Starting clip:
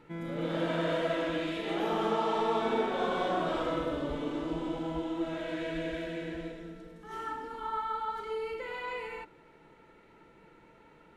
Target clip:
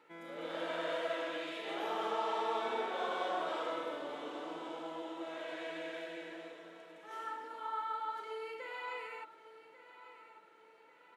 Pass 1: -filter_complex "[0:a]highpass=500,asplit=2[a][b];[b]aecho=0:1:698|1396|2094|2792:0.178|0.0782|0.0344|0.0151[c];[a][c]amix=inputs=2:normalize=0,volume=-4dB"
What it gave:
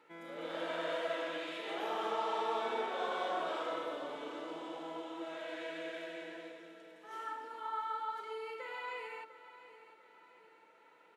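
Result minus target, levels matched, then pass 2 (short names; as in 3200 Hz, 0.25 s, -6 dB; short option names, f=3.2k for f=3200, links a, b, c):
echo 0.446 s early
-filter_complex "[0:a]highpass=500,asplit=2[a][b];[b]aecho=0:1:1144|2288|3432|4576:0.178|0.0782|0.0344|0.0151[c];[a][c]amix=inputs=2:normalize=0,volume=-4dB"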